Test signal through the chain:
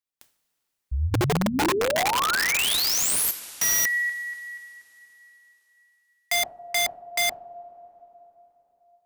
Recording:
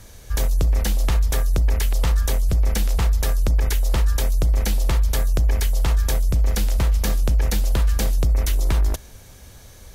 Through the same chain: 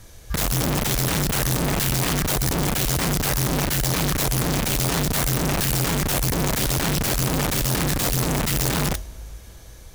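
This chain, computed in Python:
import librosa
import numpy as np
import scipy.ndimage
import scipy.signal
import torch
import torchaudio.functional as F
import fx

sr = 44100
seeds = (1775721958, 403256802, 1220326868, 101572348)

y = fx.rev_double_slope(x, sr, seeds[0], early_s=0.36, late_s=4.0, knee_db=-17, drr_db=8.0)
y = (np.mod(10.0 ** (16.5 / 20.0) * y + 1.0, 2.0) - 1.0) / 10.0 ** (16.5 / 20.0)
y = F.gain(torch.from_numpy(y), -2.0).numpy()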